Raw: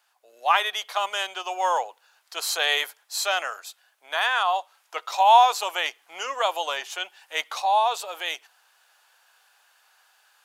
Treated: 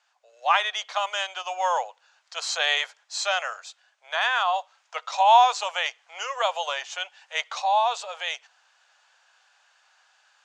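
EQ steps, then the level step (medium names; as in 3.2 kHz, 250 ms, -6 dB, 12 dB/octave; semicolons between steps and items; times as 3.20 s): elliptic band-pass 530–7000 Hz, stop band 40 dB; 0.0 dB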